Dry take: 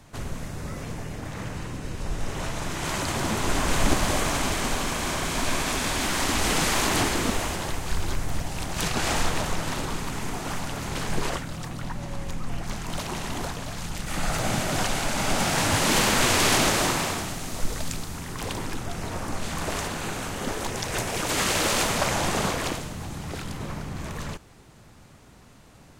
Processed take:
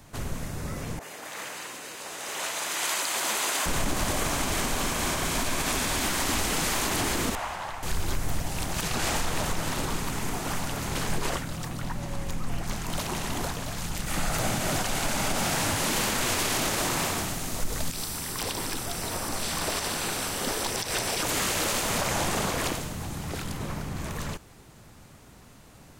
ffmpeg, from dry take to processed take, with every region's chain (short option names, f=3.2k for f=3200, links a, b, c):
-filter_complex "[0:a]asettb=1/sr,asplit=3[a][b][c];[a]atrim=end=0.994[d];[b]atrim=start=0.99:end=3.66,asetpts=PTS-STARTPTS,afade=t=in:d=0.004:c=qsin,afade=t=out:st=2.666:d=0.004:c=qsin,highpass=530,bandreject=f=5.5k:w=19,adynamicequalizer=threshold=0.00562:dfrequency=1700:dqfactor=0.7:tfrequency=1700:tqfactor=0.7:attack=5:release=100:ratio=0.375:range=2.5:mode=boostabove:tftype=highshelf[e];[c]atrim=start=3.656[f];[d][e]acrossfade=d=0.004:c1=hsin:c2=qsin[g];[g][f]acrossfade=d=0.004:c1=qsin:c2=hsin,asettb=1/sr,asplit=3[h][i][j];[h]atrim=end=7.354[k];[i]atrim=start=7.35:end=7.83,asetpts=PTS-STARTPTS,afade=t=in:d=0.004:c=qsin,afade=t=out:st=0.476:d=0.004:c=qsin,lowpass=f=1.5k:p=1,lowshelf=f=550:t=q:w=1.5:g=-12.5[l];[j]atrim=start=7.826[m];[k][l]acrossfade=d=0.004:c1=hsin:c2=qsin[n];[n][m]acrossfade=d=0.004:c1=qsin:c2=hsin,asettb=1/sr,asplit=3[o][p][q];[o]atrim=end=17.924[r];[p]atrim=start=17.92:end=21.23,asetpts=PTS-STARTPTS,afade=t=in:d=0.004:c=qsin,afade=t=out:st=3.306:d=0.004:c=qsin,acrossover=split=5900[s][t];[t]acompressor=threshold=-49dB:ratio=4:attack=1:release=60[u];[s][u]amix=inputs=2:normalize=0,bass=f=250:g=-5,treble=f=4k:g=12,bandreject=f=6.7k:w=5.9[v];[q]atrim=start=21.226[w];[r][v]acrossfade=d=0.004:c1=hsin:c2=qsin[x];[x][w]acrossfade=d=0.004:c1=qsin:c2=hsin,highshelf=f=12k:g=10.5,alimiter=limit=-17dB:level=0:latency=1:release=85"